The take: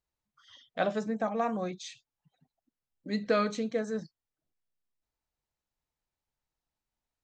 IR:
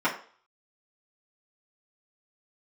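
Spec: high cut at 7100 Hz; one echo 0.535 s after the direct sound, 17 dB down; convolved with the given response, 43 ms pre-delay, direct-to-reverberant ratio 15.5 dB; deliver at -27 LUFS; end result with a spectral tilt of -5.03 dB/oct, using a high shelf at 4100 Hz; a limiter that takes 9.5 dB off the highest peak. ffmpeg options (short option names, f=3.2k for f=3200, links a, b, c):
-filter_complex "[0:a]lowpass=7.1k,highshelf=f=4.1k:g=-5,alimiter=level_in=1dB:limit=-24dB:level=0:latency=1,volume=-1dB,aecho=1:1:535:0.141,asplit=2[a][b];[1:a]atrim=start_sample=2205,adelay=43[c];[b][c]afir=irnorm=-1:irlink=0,volume=-29dB[d];[a][d]amix=inputs=2:normalize=0,volume=9dB"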